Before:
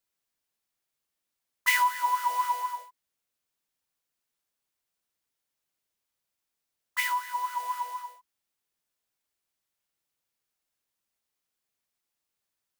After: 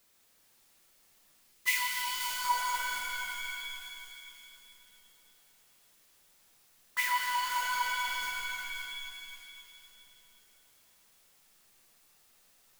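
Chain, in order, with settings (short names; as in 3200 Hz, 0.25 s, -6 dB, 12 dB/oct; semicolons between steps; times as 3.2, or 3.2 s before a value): zero-crossing step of -37 dBFS; spectral gain 1.43–2.44, 450–2000 Hz -11 dB; gate with hold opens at -39 dBFS; on a send: thin delay 0.534 s, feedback 48%, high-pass 3800 Hz, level -8 dB; on the sum: shimmer reverb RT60 2.7 s, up +7 st, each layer -2 dB, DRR 1 dB; gain -4 dB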